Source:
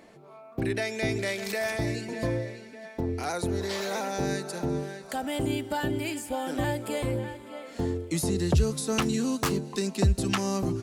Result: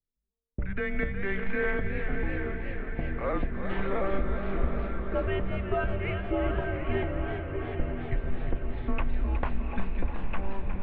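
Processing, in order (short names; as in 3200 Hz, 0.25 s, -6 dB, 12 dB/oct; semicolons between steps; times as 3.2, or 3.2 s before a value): gate -42 dBFS, range -39 dB; low-pass opened by the level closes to 320 Hz, open at -25.5 dBFS; resonant low shelf 240 Hz +8.5 dB, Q 3; compressor 6:1, threshold -27 dBFS, peak gain reduction 18.5 dB; air absorption 260 m; diffused feedback echo 0.772 s, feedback 54%, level -8 dB; mistuned SSB -200 Hz 180–3000 Hz; warbling echo 0.362 s, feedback 67%, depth 108 cents, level -9.5 dB; gain +6 dB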